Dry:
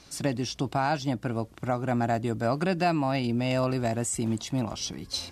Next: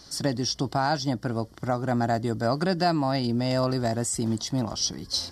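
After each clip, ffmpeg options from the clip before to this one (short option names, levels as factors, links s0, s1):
-af "superequalizer=12b=0.316:14b=2.24,volume=1.19"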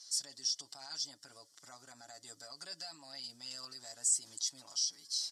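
-af "aecho=1:1:7.1:0.94,alimiter=limit=0.126:level=0:latency=1:release=72,bandpass=f=7300:t=q:w=1.9:csg=0"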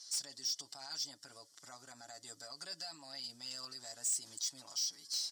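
-af "asoftclip=type=tanh:threshold=0.0266,volume=1.12"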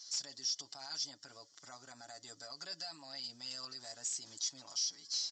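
-af "aresample=16000,aresample=44100,volume=1.12"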